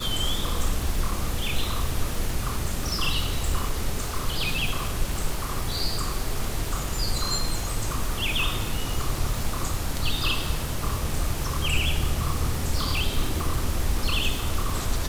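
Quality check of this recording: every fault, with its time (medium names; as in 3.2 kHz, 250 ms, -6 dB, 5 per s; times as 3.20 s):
crackle 400 per s -30 dBFS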